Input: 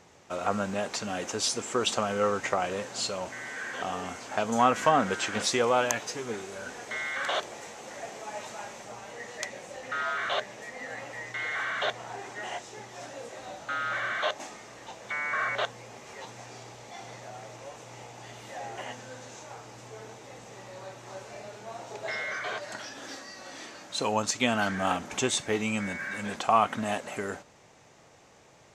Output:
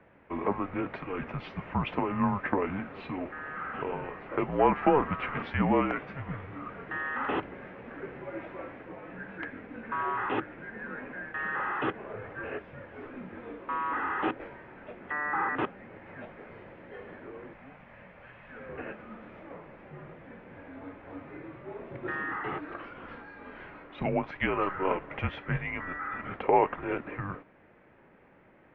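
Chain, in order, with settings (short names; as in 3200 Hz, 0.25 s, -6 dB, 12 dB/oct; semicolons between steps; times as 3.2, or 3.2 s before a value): mistuned SSB -290 Hz 370–2700 Hz; 17.53–18.69 bell 360 Hz -14 dB 1 oct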